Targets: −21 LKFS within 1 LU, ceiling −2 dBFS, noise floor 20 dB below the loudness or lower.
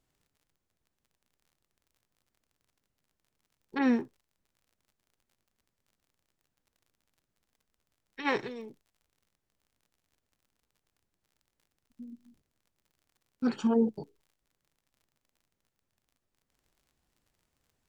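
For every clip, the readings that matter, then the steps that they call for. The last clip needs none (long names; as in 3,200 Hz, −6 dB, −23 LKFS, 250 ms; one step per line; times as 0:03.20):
crackle rate 36 per second; integrated loudness −30.5 LKFS; sample peak −16.0 dBFS; target loudness −21.0 LKFS
→ click removal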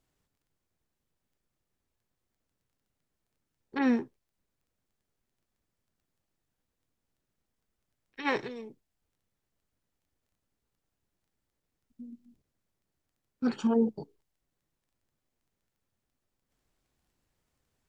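crackle rate 0 per second; integrated loudness −30.5 LKFS; sample peak −16.0 dBFS; target loudness −21.0 LKFS
→ level +9.5 dB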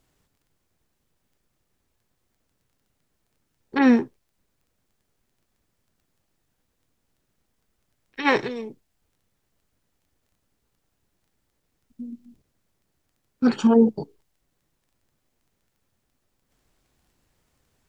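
integrated loudness −21.0 LKFS; sample peak −6.5 dBFS; background noise floor −75 dBFS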